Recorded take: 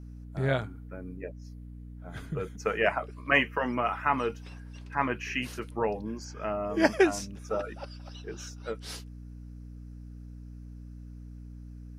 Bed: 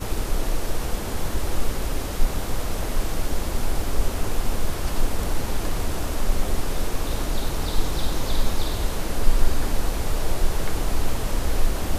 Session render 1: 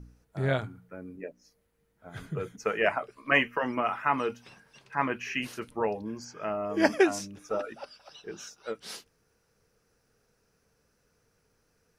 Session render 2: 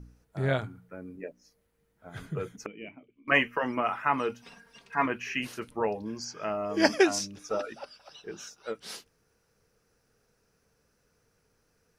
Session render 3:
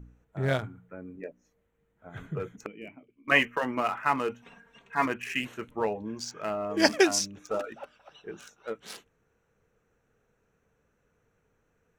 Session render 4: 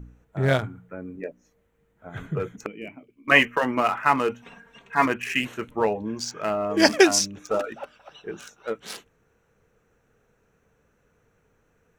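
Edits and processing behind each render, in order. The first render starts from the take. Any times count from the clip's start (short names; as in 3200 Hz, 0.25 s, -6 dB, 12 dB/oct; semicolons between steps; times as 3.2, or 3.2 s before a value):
de-hum 60 Hz, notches 5
2.66–3.28 vocal tract filter i; 4.42–5.06 comb 4.3 ms, depth 71%; 6.01–7.79 bell 4900 Hz +8.5 dB 1.1 oct
Wiener smoothing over 9 samples; high shelf 4000 Hz +8 dB
gain +6 dB; limiter -2 dBFS, peak gain reduction 2 dB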